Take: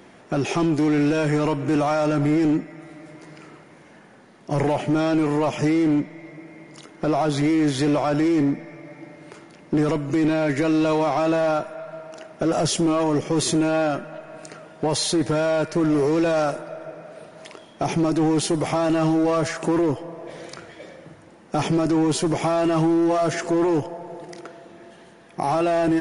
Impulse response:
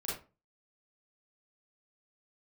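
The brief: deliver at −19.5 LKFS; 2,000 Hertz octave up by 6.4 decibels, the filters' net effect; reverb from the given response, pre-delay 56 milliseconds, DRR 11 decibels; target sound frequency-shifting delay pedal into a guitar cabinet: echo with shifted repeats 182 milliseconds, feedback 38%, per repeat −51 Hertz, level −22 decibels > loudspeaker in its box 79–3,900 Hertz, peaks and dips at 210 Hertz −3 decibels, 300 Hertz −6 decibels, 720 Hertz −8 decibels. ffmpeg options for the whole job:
-filter_complex "[0:a]equalizer=frequency=2000:width_type=o:gain=8.5,asplit=2[link_01][link_02];[1:a]atrim=start_sample=2205,adelay=56[link_03];[link_02][link_03]afir=irnorm=-1:irlink=0,volume=-13.5dB[link_04];[link_01][link_04]amix=inputs=2:normalize=0,asplit=4[link_05][link_06][link_07][link_08];[link_06]adelay=182,afreqshift=-51,volume=-22dB[link_09];[link_07]adelay=364,afreqshift=-102,volume=-30.4dB[link_10];[link_08]adelay=546,afreqshift=-153,volume=-38.8dB[link_11];[link_05][link_09][link_10][link_11]amix=inputs=4:normalize=0,highpass=79,equalizer=frequency=210:width_type=q:width=4:gain=-3,equalizer=frequency=300:width_type=q:width=4:gain=-6,equalizer=frequency=720:width_type=q:width=4:gain=-8,lowpass=frequency=3900:width=0.5412,lowpass=frequency=3900:width=1.3066,volume=4dB"

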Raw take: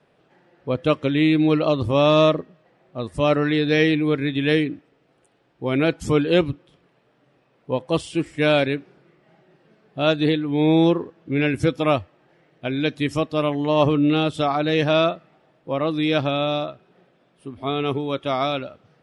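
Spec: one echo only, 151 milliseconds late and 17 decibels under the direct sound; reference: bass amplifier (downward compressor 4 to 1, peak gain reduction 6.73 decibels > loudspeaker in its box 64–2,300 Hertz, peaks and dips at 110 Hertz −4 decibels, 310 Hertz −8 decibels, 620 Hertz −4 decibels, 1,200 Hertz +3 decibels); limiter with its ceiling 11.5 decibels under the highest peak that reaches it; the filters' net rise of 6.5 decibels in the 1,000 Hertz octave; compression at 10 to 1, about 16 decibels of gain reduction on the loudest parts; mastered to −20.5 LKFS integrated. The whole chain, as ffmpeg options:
ffmpeg -i in.wav -af "equalizer=frequency=1000:width_type=o:gain=7.5,acompressor=threshold=-26dB:ratio=10,alimiter=level_in=0.5dB:limit=-24dB:level=0:latency=1,volume=-0.5dB,aecho=1:1:151:0.141,acompressor=threshold=-35dB:ratio=4,highpass=frequency=64:width=0.5412,highpass=frequency=64:width=1.3066,equalizer=frequency=110:width_type=q:width=4:gain=-4,equalizer=frequency=310:width_type=q:width=4:gain=-8,equalizer=frequency=620:width_type=q:width=4:gain=-4,equalizer=frequency=1200:width_type=q:width=4:gain=3,lowpass=frequency=2300:width=0.5412,lowpass=frequency=2300:width=1.3066,volume=21.5dB" out.wav

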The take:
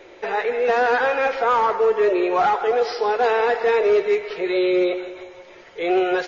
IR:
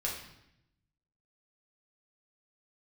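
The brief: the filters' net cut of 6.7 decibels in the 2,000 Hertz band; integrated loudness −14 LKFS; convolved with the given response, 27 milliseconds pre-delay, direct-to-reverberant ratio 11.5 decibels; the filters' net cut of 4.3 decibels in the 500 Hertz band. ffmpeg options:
-filter_complex "[0:a]equalizer=frequency=500:width_type=o:gain=-5,equalizer=frequency=2000:width_type=o:gain=-9,asplit=2[link_01][link_02];[1:a]atrim=start_sample=2205,adelay=27[link_03];[link_02][link_03]afir=irnorm=-1:irlink=0,volume=-15.5dB[link_04];[link_01][link_04]amix=inputs=2:normalize=0,volume=9.5dB"

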